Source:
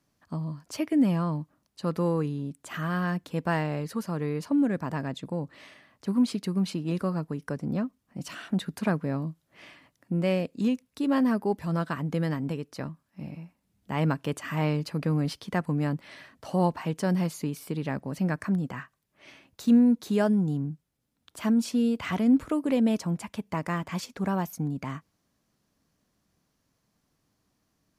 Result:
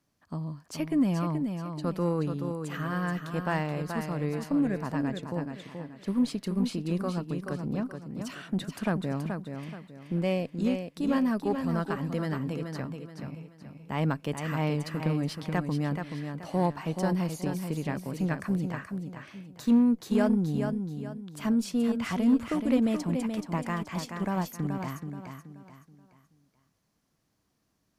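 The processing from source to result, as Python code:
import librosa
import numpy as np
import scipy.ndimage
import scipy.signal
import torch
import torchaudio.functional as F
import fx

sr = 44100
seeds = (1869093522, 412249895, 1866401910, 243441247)

y = fx.echo_feedback(x, sr, ms=428, feedback_pct=35, wet_db=-6.5)
y = fx.cheby_harmonics(y, sr, harmonics=(6,), levels_db=(-28,), full_scale_db=-11.0)
y = y * librosa.db_to_amplitude(-2.5)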